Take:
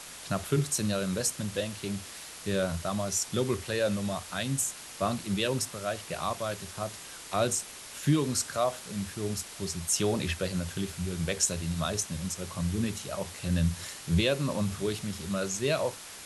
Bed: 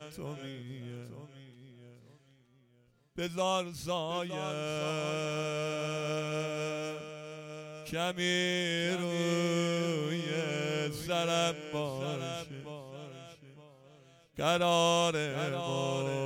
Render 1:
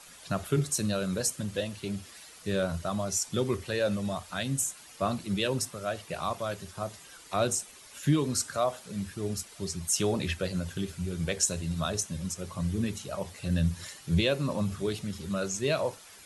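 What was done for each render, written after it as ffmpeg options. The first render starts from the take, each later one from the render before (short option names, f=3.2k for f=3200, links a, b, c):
-af "afftdn=nr=10:nf=-45"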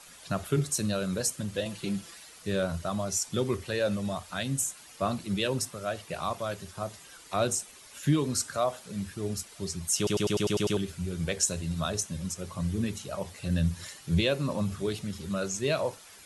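-filter_complex "[0:a]asettb=1/sr,asplit=3[a][b][c];[a]atrim=end=1.654[d];[b]atrim=start=1.65:end=2.15,asetpts=PTS-STARTPTS,afade=t=in:d=0.004:c=qsin,afade=t=out:st=0.496:d=0.004:c=qsin,aecho=1:1:5.9:0.87,atrim=end_sample=22050[e];[c]atrim=start=2.146[f];[d][e]acrossfade=d=0.004:c1=hsin:c2=qsin[g];[g][f]acrossfade=d=0.004:c1=qsin:c2=hsin,asplit=9[h][i][j][k][l][m][n][o][p];[h]atrim=end=10.072[q];[i]atrim=start=9.968:end=10.072[r];[j]atrim=start=9.968:end=10.072[s];[k]atrim=start=9.968:end=10.072[t];[l]atrim=start=9.968:end=10.072[u];[m]atrim=start=9.968:end=10.072[v];[n]atrim=start=9.968:end=10.072[w];[o]atrim=start=9.968:end=10.072[x];[p]atrim=start=10.768[y];[q][r]acrossfade=d=0.004:c1=hsin:c2=hsin[z];[z][s]acrossfade=d=0.004:c1=hsin:c2=hsin[aa];[aa][t]acrossfade=d=0.004:c1=hsin:c2=hsin[ab];[ab][u]acrossfade=d=0.004:c1=hsin:c2=hsin[ac];[ac][v]acrossfade=d=0.004:c1=hsin:c2=hsin[ad];[ad][w]acrossfade=d=0.004:c1=hsin:c2=hsin[ae];[ae][x]acrossfade=d=0.004:c1=hsin:c2=hsin[af];[af][y]acrossfade=d=0.004:c1=hsin:c2=hsin"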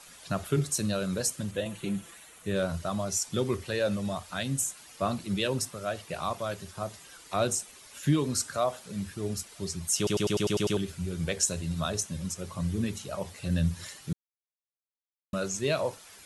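-filter_complex "[0:a]asettb=1/sr,asplit=3[a][b][c];[a]atrim=end=1.514[d];[b]atrim=start=1.51:end=2.56,asetpts=PTS-STARTPTS,afade=t=in:d=0.004:c=qsin,afade=t=out:st=1.046:d=0.004:c=qsin,equalizer=f=4.9k:t=o:w=0.48:g=-12.5[e];[c]atrim=start=2.556[f];[d][e]acrossfade=d=0.004:c1=hsin:c2=qsin[g];[g][f]acrossfade=d=0.004:c1=qsin:c2=hsin,asplit=3[h][i][j];[h]atrim=end=14.13,asetpts=PTS-STARTPTS,afade=t=out:st=14.126:d=0.004:c=hsin[k];[i]atrim=start=14.13:end=15.33,asetpts=PTS-STARTPTS,volume=0[l];[j]atrim=start=15.33,asetpts=PTS-STARTPTS,afade=t=in:d=0.004:c=hsin[m];[k][l][m]concat=n=3:v=0:a=1"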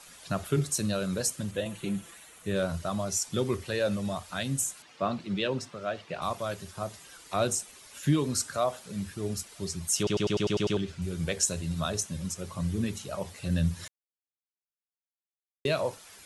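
-filter_complex "[0:a]asettb=1/sr,asplit=3[a][b][c];[a]atrim=end=4.824[d];[b]atrim=start=4.82:end=6.22,asetpts=PTS-STARTPTS,afade=t=in:d=0.004:c=qsin,afade=t=out:st=1.396:d=0.004:c=qsin,highpass=130,lowpass=4.1k[e];[c]atrim=start=6.216[f];[d][e]acrossfade=d=0.004:c1=hsin:c2=qsin[g];[g][f]acrossfade=d=0.004:c1=qsin:c2=hsin,asettb=1/sr,asplit=3[h][i][j];[h]atrim=end=10.034[k];[i]atrim=start=10.03:end=11.02,asetpts=PTS-STARTPTS,afade=t=in:d=0.004:c=qsin,afade=t=out:st=0.986:d=0.004:c=qsin,lowpass=5.6k[l];[j]atrim=start=11.016[m];[k][l]acrossfade=d=0.004:c1=hsin:c2=qsin[n];[n][m]acrossfade=d=0.004:c1=qsin:c2=hsin,asplit=3[o][p][q];[o]atrim=end=13.88,asetpts=PTS-STARTPTS,afade=t=out:st=13.876:d=0.004:c=hsin[r];[p]atrim=start=13.88:end=15.65,asetpts=PTS-STARTPTS,volume=0[s];[q]atrim=start=15.65,asetpts=PTS-STARTPTS,afade=t=in:d=0.004:c=hsin[t];[r][s][t]concat=n=3:v=0:a=1"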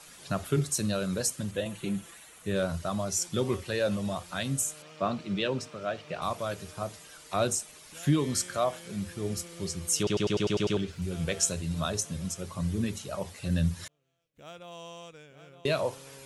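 -filter_complex "[1:a]volume=-18dB[a];[0:a][a]amix=inputs=2:normalize=0"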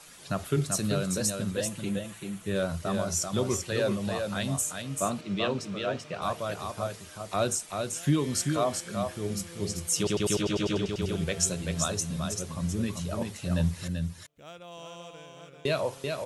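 -af "aecho=1:1:387:0.562"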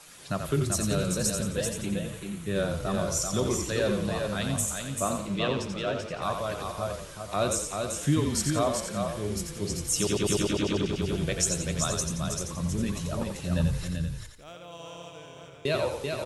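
-filter_complex "[0:a]asplit=6[a][b][c][d][e][f];[b]adelay=87,afreqshift=-32,volume=-6dB[g];[c]adelay=174,afreqshift=-64,volume=-13.3dB[h];[d]adelay=261,afreqshift=-96,volume=-20.7dB[i];[e]adelay=348,afreqshift=-128,volume=-28dB[j];[f]adelay=435,afreqshift=-160,volume=-35.3dB[k];[a][g][h][i][j][k]amix=inputs=6:normalize=0"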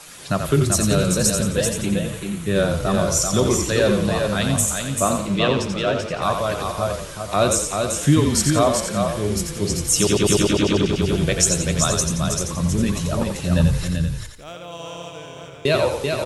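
-af "volume=9dB"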